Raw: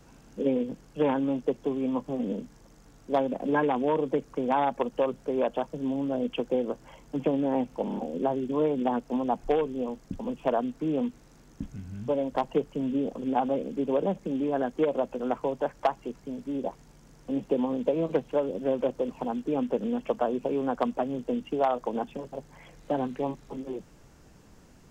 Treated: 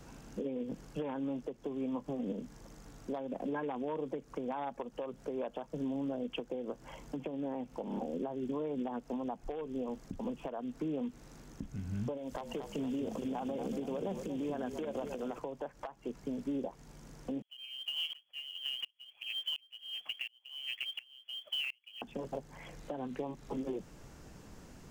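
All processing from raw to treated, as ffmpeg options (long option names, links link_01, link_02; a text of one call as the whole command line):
ffmpeg -i in.wav -filter_complex "[0:a]asettb=1/sr,asplit=3[link_01][link_02][link_03];[link_01]atrim=end=12.174[link_04];[link_02]atrim=start=12.17:end=15.39,asetpts=PTS-STARTPTS,afade=type=in:duration=0.004:curve=qsin,afade=type=out:start_time=3.216:duration=0.004:curve=qsin,highshelf=frequency=3100:gain=10,acompressor=threshold=-32dB:ratio=5:attack=3.2:release=140:knee=1:detection=peak,asplit=7[link_05][link_06][link_07][link_08][link_09][link_10][link_11];[link_06]adelay=234,afreqshift=-33,volume=-9dB[link_12];[link_07]adelay=468,afreqshift=-66,volume=-15dB[link_13];[link_08]adelay=702,afreqshift=-99,volume=-21dB[link_14];[link_09]adelay=936,afreqshift=-132,volume=-27.1dB[link_15];[link_10]adelay=1170,afreqshift=-165,volume=-33.1dB[link_16];[link_11]adelay=1404,afreqshift=-198,volume=-39.1dB[link_17];[link_05][link_12][link_13][link_14][link_15][link_16][link_17]amix=inputs=7:normalize=0,atrim=end_sample=142002[link_18];[link_03]atrim=start=15.386[link_19];[link_04][link_18]acrossfade=duration=0.004:curve1=hsin:curve2=qsin[link_20];[link_20][link_19]acrossfade=duration=0.004:curve1=qsin:curve2=hsin,asettb=1/sr,asplit=3[link_21][link_22][link_23];[link_21]atrim=end=17.424[link_24];[link_22]atrim=start=17.42:end=22.02,asetpts=PTS-STARTPTS,afade=type=in:duration=0.004:curve=qsin,afade=type=out:start_time=4.596:duration=0.004:curve=qsin,lowpass=frequency=2900:width_type=q:width=0.5098,lowpass=frequency=2900:width_type=q:width=0.6013,lowpass=frequency=2900:width_type=q:width=0.9,lowpass=frequency=2900:width_type=q:width=2.563,afreqshift=-3400,acrusher=bits=5:mode=log:mix=0:aa=0.000001,aeval=exprs='val(0)*pow(10,-33*if(lt(mod(-1.4*n/s,1),2*abs(-1.4)/1000),1-mod(-1.4*n/s,1)/(2*abs(-1.4)/1000),(mod(-1.4*n/s,1)-2*abs(-1.4)/1000)/(1-2*abs(-1.4)/1000))/20)':channel_layout=same[link_25];[link_23]atrim=start=22.016[link_26];[link_24][link_25]acrossfade=duration=0.004:curve1=hsin:curve2=qsin[link_27];[link_27][link_26]acrossfade=duration=0.004:curve1=qsin:curve2=hsin,acompressor=threshold=-32dB:ratio=10,alimiter=level_in=6dB:limit=-24dB:level=0:latency=1:release=344,volume=-6dB,volume=2dB" out.wav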